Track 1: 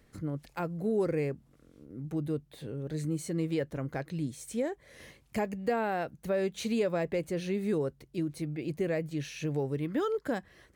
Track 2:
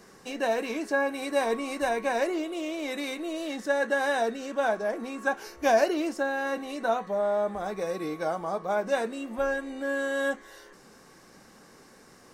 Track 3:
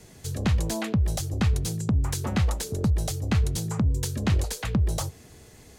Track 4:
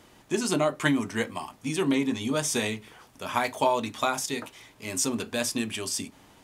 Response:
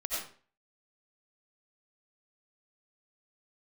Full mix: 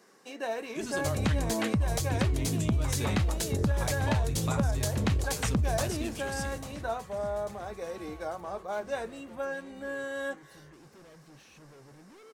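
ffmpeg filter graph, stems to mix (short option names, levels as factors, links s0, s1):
-filter_complex "[0:a]asoftclip=type=hard:threshold=0.0119,adelay=2150,volume=0.2[s0];[1:a]highpass=230,volume=0.473[s1];[2:a]adelay=800,volume=1.12,asplit=2[s2][s3];[s3]volume=0.15[s4];[3:a]adelay=450,volume=0.316,asplit=2[s5][s6];[s6]volume=0.0891[s7];[s4][s7]amix=inputs=2:normalize=0,aecho=0:1:844|1688|2532|3376|4220|5064|5908:1|0.51|0.26|0.133|0.0677|0.0345|0.0176[s8];[s0][s1][s2][s5][s8]amix=inputs=5:normalize=0,acompressor=threshold=0.0631:ratio=5"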